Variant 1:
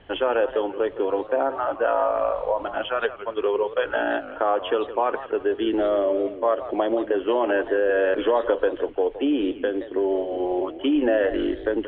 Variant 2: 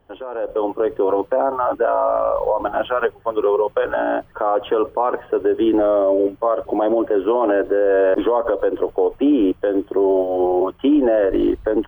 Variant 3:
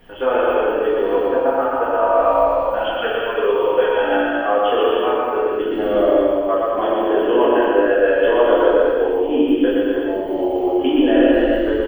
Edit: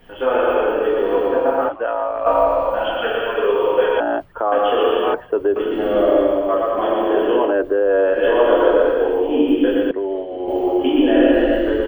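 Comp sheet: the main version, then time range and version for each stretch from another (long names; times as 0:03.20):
3
0:01.69–0:02.26: punch in from 1
0:04.00–0:04.52: punch in from 2
0:05.14–0:05.56: punch in from 2
0:07.45–0:08.15: punch in from 2, crossfade 0.24 s
0:09.91–0:10.48: punch in from 1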